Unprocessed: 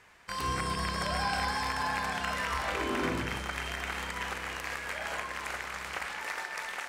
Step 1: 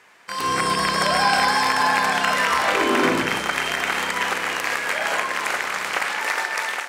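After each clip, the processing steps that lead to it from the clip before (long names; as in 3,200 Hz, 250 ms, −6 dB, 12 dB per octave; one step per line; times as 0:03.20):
high-pass filter 220 Hz 12 dB per octave
automatic gain control gain up to 7 dB
level +6 dB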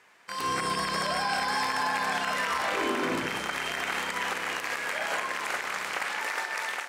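brickwall limiter −12.5 dBFS, peak gain reduction 6 dB
level −6.5 dB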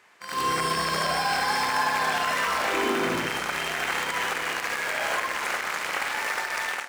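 in parallel at −11.5 dB: bit reduction 5 bits
on the sum: backwards echo 74 ms −4.5 dB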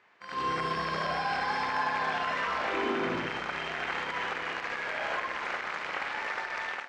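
high-frequency loss of the air 180 metres
level −4 dB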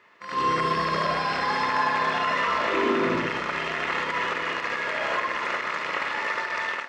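notch comb filter 770 Hz
level +7.5 dB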